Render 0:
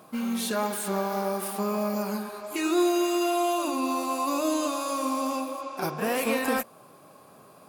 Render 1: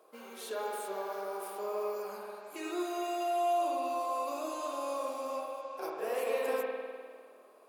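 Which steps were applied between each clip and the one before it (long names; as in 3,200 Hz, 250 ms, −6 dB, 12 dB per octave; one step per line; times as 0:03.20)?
four-pole ladder high-pass 380 Hz, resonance 55%
spring reverb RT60 1.8 s, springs 50 ms, chirp 30 ms, DRR −0.5 dB
level −3.5 dB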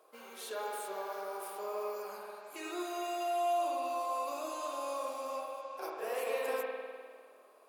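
low-shelf EQ 300 Hz −11 dB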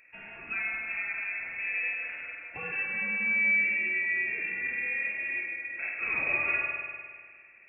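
voice inversion scrambler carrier 3,000 Hz
level +6 dB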